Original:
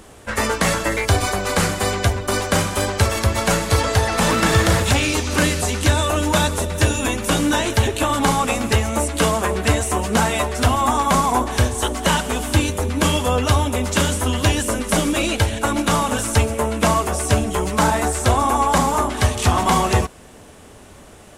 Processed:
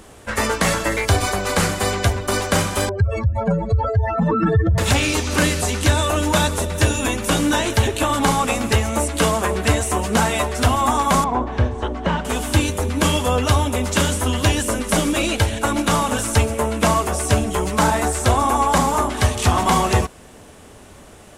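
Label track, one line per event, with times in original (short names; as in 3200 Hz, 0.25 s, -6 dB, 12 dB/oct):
2.890000	4.780000	spectral contrast raised exponent 3.1
11.240000	12.250000	tape spacing loss at 10 kHz 33 dB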